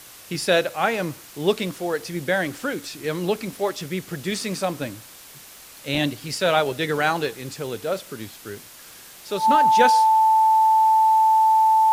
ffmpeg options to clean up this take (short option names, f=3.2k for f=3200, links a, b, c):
-af "adeclick=t=4,bandreject=f=880:w=30,afftdn=nr=22:nf=-44"